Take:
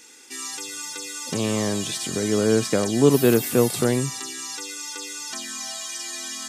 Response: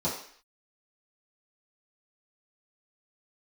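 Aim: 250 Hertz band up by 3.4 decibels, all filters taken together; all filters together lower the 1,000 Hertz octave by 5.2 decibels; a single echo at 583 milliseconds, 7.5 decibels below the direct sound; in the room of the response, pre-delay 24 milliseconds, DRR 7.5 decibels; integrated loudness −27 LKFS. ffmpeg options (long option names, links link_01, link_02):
-filter_complex "[0:a]equalizer=frequency=250:width_type=o:gain=4.5,equalizer=frequency=1000:width_type=o:gain=-7.5,aecho=1:1:583:0.422,asplit=2[link_01][link_02];[1:a]atrim=start_sample=2205,adelay=24[link_03];[link_02][link_03]afir=irnorm=-1:irlink=0,volume=-16dB[link_04];[link_01][link_04]amix=inputs=2:normalize=0,volume=-7.5dB"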